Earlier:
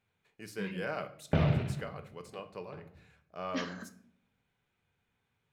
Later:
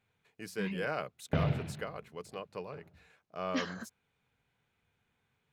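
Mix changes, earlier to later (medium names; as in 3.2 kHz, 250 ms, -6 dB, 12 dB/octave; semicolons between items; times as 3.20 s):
speech +5.0 dB; reverb: off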